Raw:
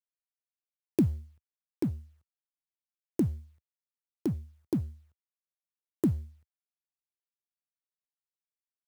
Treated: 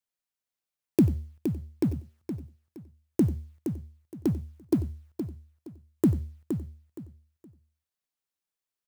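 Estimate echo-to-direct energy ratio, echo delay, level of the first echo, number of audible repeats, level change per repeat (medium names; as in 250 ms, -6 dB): -7.5 dB, 92 ms, -17.5 dB, 5, no regular repeats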